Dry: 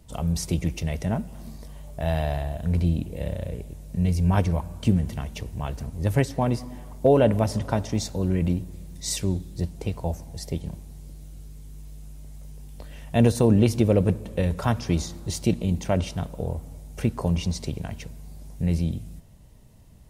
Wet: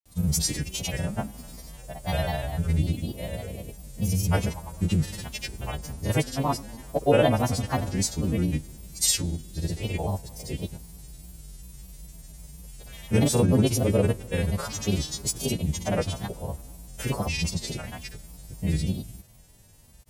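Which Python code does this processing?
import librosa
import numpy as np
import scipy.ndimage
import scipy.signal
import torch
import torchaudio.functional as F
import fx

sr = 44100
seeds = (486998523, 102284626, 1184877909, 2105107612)

y = fx.freq_snap(x, sr, grid_st=2)
y = fx.granulator(y, sr, seeds[0], grain_ms=100.0, per_s=20.0, spray_ms=100.0, spread_st=3)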